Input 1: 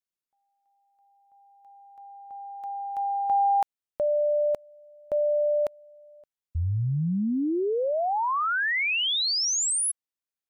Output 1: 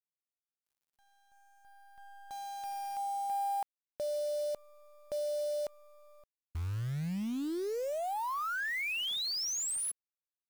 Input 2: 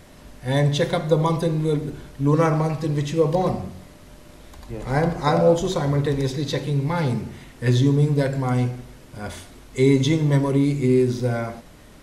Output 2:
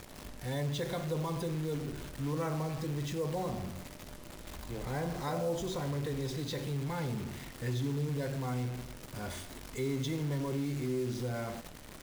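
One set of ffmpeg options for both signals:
-af "acompressor=threshold=0.0224:ratio=2.5:attack=0.22:release=55:knee=6:detection=peak,acrusher=bits=8:dc=4:mix=0:aa=0.000001,volume=0.708"

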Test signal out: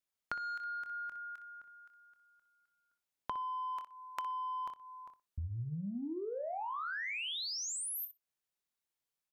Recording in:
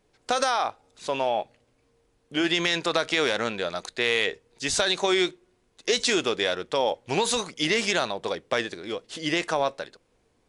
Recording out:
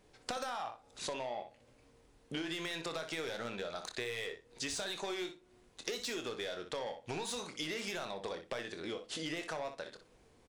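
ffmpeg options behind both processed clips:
-filter_complex "[0:a]asoftclip=type=tanh:threshold=0.1,asplit=2[s0][s1];[s1]aecho=0:1:25|61:0.316|0.141[s2];[s0][s2]amix=inputs=2:normalize=0,acompressor=threshold=0.01:ratio=8,asplit=2[s3][s4];[s4]adelay=61,lowpass=f=4600:p=1,volume=0.178,asplit=2[s5][s6];[s6]adelay=61,lowpass=f=4600:p=1,volume=0.18[s7];[s5][s7]amix=inputs=2:normalize=0[s8];[s3][s8]amix=inputs=2:normalize=0,volume=1.26"

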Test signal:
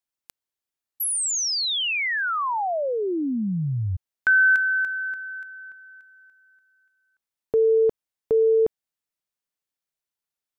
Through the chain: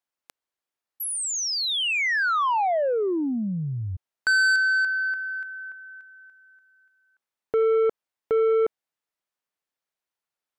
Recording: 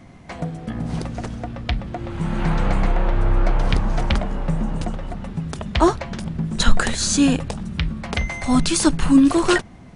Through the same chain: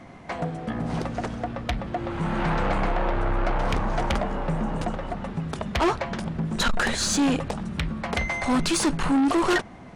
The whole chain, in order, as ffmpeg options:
-filter_complex "[0:a]asplit=2[s0][s1];[s1]highpass=f=720:p=1,volume=4.47,asoftclip=type=tanh:threshold=0.891[s2];[s0][s2]amix=inputs=2:normalize=0,lowpass=f=1100:p=1,volume=0.501,asoftclip=type=tanh:threshold=0.126,highshelf=f=5900:g=7.5"

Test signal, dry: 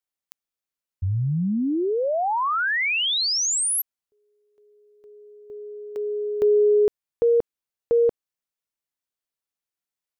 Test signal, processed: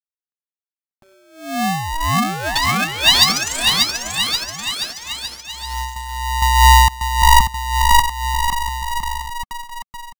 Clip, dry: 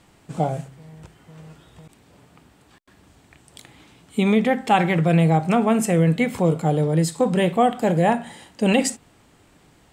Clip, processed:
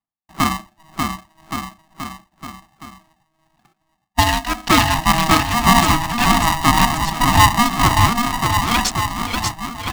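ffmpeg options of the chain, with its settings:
-filter_complex "[0:a]afftdn=nr=16:nf=-41,agate=range=0.0447:threshold=0.00501:ratio=3:release=251:detection=rms,equalizer=f=940:t=o:w=0.78:g=-8.5,acrossover=split=1300[s0][s1];[s1]acrusher=bits=4:mix=0:aa=0.000001[s2];[s0][s2]amix=inputs=2:normalize=0,crystalizer=i=3.5:c=0,tremolo=f=1.9:d=0.61,aphaser=in_gain=1:out_gain=1:delay=1.1:decay=0.56:speed=1.2:type=triangular,highpass=f=320:w=0.5412,highpass=f=320:w=1.3066,equalizer=f=690:t=q:w=4:g=10,equalizer=f=1700:t=q:w=4:g=-8,equalizer=f=2800:t=q:w=4:g=-9,lowpass=f=4400:w=0.5412,lowpass=f=4400:w=1.3066,asplit=2[s3][s4];[s4]aecho=0:1:590|1121|1599|2029|2416:0.631|0.398|0.251|0.158|0.1[s5];[s3][s5]amix=inputs=2:normalize=0,alimiter=level_in=2.66:limit=0.891:release=50:level=0:latency=1,aeval=exprs='val(0)*sgn(sin(2*PI*480*n/s))':c=same,volume=0.891"

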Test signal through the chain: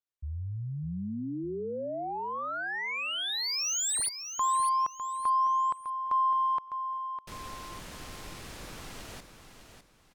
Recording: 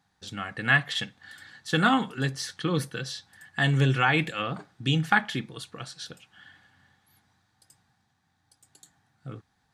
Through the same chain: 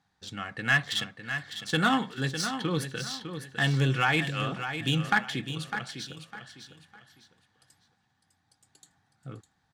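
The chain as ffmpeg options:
-filter_complex "[0:a]aemphasis=mode=production:type=50fm,adynamicsmooth=sensitivity=3:basefreq=4700,asoftclip=type=tanh:threshold=0.376,asplit=2[s0][s1];[s1]aecho=0:1:604|1208|1812:0.355|0.106|0.0319[s2];[s0][s2]amix=inputs=2:normalize=0,volume=0.794"

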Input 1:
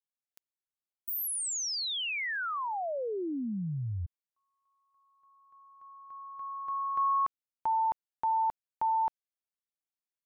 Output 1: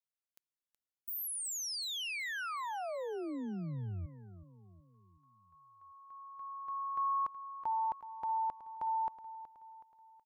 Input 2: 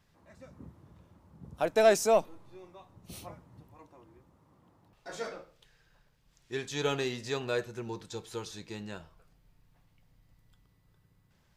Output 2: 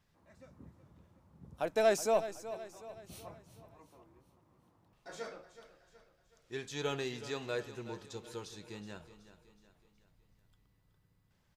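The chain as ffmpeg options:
-af "aecho=1:1:372|744|1116|1488|1860:0.211|0.0993|0.0467|0.0219|0.0103,volume=0.531"

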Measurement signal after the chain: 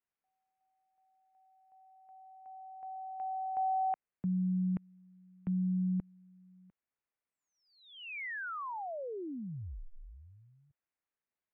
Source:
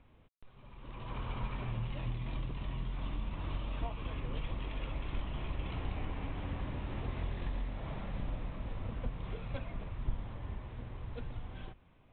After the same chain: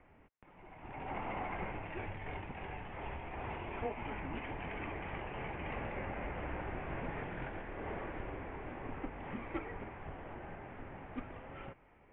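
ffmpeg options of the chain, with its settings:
-af "asubboost=boost=4.5:cutoff=80,highpass=f=210:t=q:w=0.5412,highpass=f=210:t=q:w=1.307,lowpass=f=2700:t=q:w=0.5176,lowpass=f=2700:t=q:w=0.7071,lowpass=f=2700:t=q:w=1.932,afreqshift=-220,volume=2.11"

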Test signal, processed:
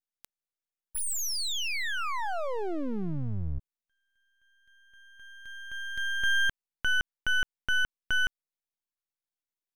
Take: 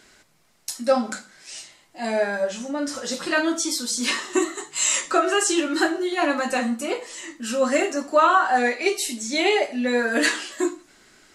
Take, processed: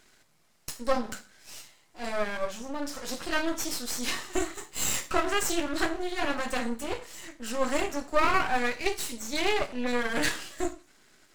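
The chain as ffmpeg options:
-af "aeval=exprs='max(val(0),0)':c=same,volume=0.708"

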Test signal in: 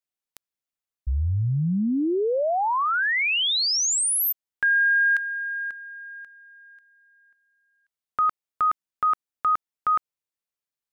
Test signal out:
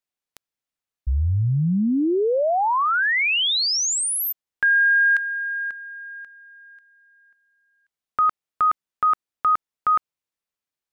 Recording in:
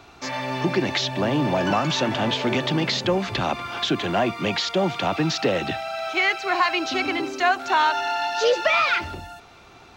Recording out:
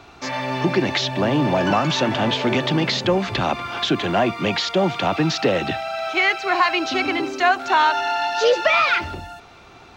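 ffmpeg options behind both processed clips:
-af "highshelf=f=7100:g=-5.5,volume=1.41"

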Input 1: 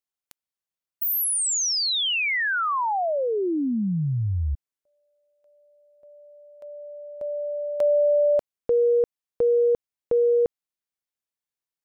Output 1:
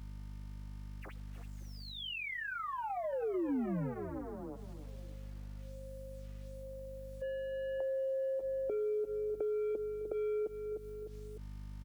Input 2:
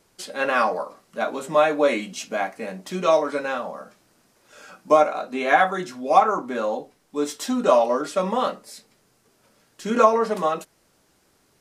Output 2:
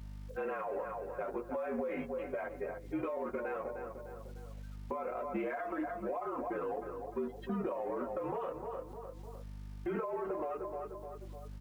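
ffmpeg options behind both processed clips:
-filter_complex "[0:a]aeval=exprs='val(0)+0.5*0.0473*sgn(val(0))':c=same,agate=range=0.0794:threshold=0.0447:ratio=16:release=44:detection=peak,flanger=delay=7.4:depth=3.6:regen=-10:speed=0.2:shape=sinusoidal,afftdn=nr=26:nf=-41,highpass=f=350:t=q:w=0.5412,highpass=f=350:t=q:w=1.307,lowpass=f=2600:t=q:w=0.5176,lowpass=f=2600:t=q:w=0.7071,lowpass=f=2600:t=q:w=1.932,afreqshift=-53,asplit=2[s0][s1];[s1]adelay=302,lowpass=f=1900:p=1,volume=0.158,asplit=2[s2][s3];[s3]adelay=302,lowpass=f=1900:p=1,volume=0.39,asplit=2[s4][s5];[s5]adelay=302,lowpass=f=1900:p=1,volume=0.39[s6];[s2][s4][s6]amix=inputs=3:normalize=0[s7];[s0][s7]amix=inputs=2:normalize=0,aeval=exprs='val(0)+0.00112*(sin(2*PI*50*n/s)+sin(2*PI*2*50*n/s)/2+sin(2*PI*3*50*n/s)/3+sin(2*PI*4*50*n/s)/4+sin(2*PI*5*50*n/s)/5)':c=same,acompressor=threshold=0.0178:ratio=20:attack=6.6:release=49:knee=6:detection=rms,lowshelf=f=490:g=11,acrusher=bits=10:mix=0:aa=0.000001,acompressor=mode=upward:threshold=0.02:ratio=4:attack=0.25:release=255:knee=2.83:detection=peak,volume=0.631"

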